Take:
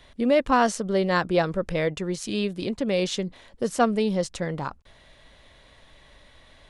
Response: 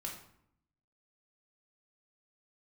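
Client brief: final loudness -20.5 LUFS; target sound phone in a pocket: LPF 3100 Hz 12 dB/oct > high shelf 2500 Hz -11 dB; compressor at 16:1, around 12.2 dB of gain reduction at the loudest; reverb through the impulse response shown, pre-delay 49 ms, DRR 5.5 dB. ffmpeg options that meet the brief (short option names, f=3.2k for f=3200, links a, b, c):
-filter_complex "[0:a]acompressor=threshold=-27dB:ratio=16,asplit=2[a][b];[1:a]atrim=start_sample=2205,adelay=49[c];[b][c]afir=irnorm=-1:irlink=0,volume=-4.5dB[d];[a][d]amix=inputs=2:normalize=0,lowpass=3.1k,highshelf=f=2.5k:g=-11,volume=12dB"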